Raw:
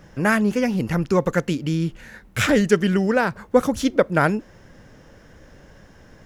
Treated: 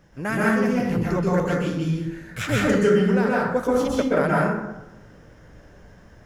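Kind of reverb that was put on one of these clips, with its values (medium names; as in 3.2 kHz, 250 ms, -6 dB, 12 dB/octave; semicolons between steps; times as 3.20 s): plate-style reverb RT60 0.98 s, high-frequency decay 0.45×, pre-delay 115 ms, DRR -6 dB; trim -8.5 dB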